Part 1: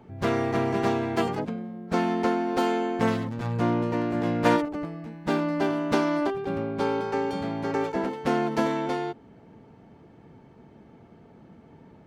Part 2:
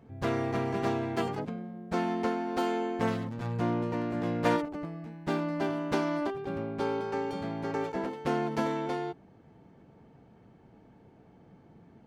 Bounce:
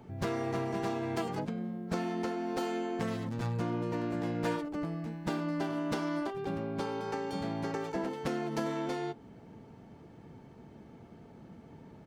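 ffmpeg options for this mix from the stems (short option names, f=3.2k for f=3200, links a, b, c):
-filter_complex "[0:a]acompressor=threshold=-30dB:ratio=6,bass=f=250:g=2,treble=f=4k:g=6,volume=-2dB[a];[1:a]flanger=delay=17:depth=4.5:speed=1.8,adelay=6.1,volume=-10dB[b];[a][b]amix=inputs=2:normalize=0"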